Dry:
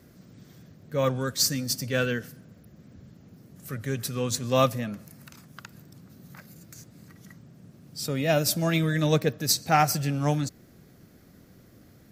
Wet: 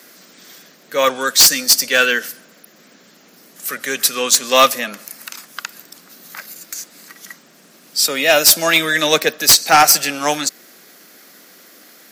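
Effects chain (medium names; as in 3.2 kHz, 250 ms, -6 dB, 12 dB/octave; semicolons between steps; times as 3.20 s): Bessel high-pass 340 Hz, order 8; tilt shelf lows -7 dB, about 820 Hz; sine folder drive 10 dB, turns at -2.5 dBFS; trim -1 dB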